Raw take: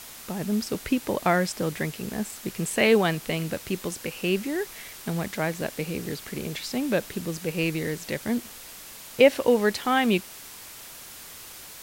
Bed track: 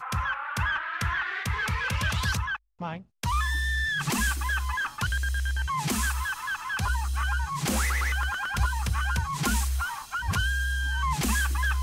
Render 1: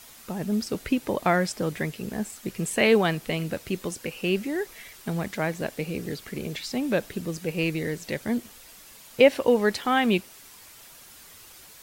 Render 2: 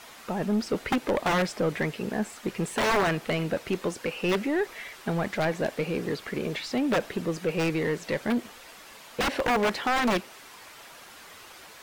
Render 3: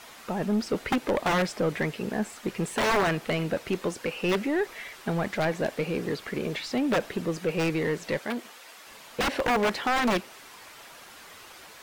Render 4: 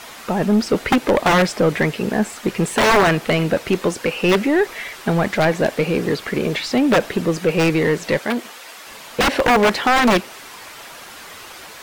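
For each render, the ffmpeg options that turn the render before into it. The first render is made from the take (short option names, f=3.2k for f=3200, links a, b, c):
-af "afftdn=nr=7:nf=-44"
-filter_complex "[0:a]aeval=exprs='(mod(6.68*val(0)+1,2)-1)/6.68':c=same,asplit=2[a][b];[b]highpass=f=720:p=1,volume=17dB,asoftclip=type=tanh:threshold=-16dB[c];[a][c]amix=inputs=2:normalize=0,lowpass=f=1.3k:p=1,volume=-6dB"
-filter_complex "[0:a]asettb=1/sr,asplit=3[a][b][c];[a]atrim=end=8.194[d];[b]atrim=start=8.19:end=8.87,asetpts=PTS-STARTPTS,afade=t=in:d=0.004:c=qsin,afade=t=out:st=0.676:d=0.004:c=qsin,highpass=f=490:p=1[e];[c]atrim=start=8.866[f];[d][e]acrossfade=d=0.004:c1=hsin:c2=qsin[g];[g][f]acrossfade=d=0.004:c1=qsin:c2=hsin"
-af "volume=10dB"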